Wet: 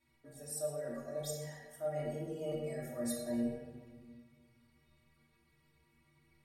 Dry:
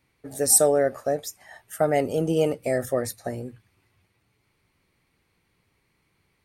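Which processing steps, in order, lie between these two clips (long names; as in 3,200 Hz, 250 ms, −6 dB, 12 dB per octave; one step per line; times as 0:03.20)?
reversed playback
downward compressor 10 to 1, threshold −34 dBFS, peak gain reduction 21 dB
reversed playback
stiff-string resonator 70 Hz, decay 0.51 s, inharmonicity 0.03
convolution reverb RT60 1.4 s, pre-delay 3 ms, DRR −3.5 dB
level +2.5 dB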